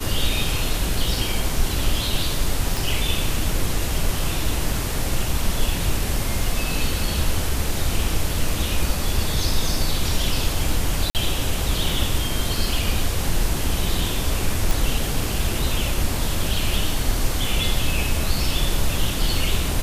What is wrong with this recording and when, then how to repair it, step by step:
0:02.77: click
0:11.10–0:11.15: drop-out 48 ms
0:14.71: click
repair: click removal
repair the gap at 0:11.10, 48 ms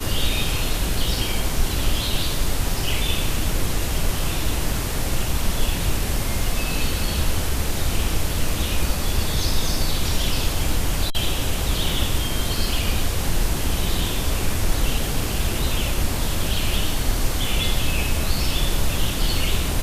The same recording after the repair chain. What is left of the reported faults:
none of them is left

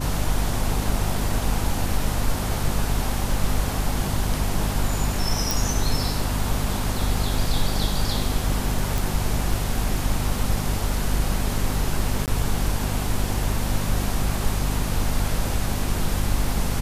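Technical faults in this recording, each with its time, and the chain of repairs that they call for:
mains hum 50 Hz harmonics 5 −27 dBFS
0:05.51: click
0:08.98: click
0:12.26–0:12.28: drop-out 18 ms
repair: click removal
hum removal 50 Hz, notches 5
repair the gap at 0:12.26, 18 ms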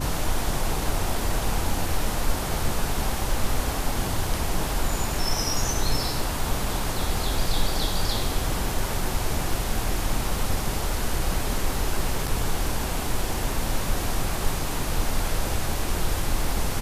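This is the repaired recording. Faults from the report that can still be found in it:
none of them is left

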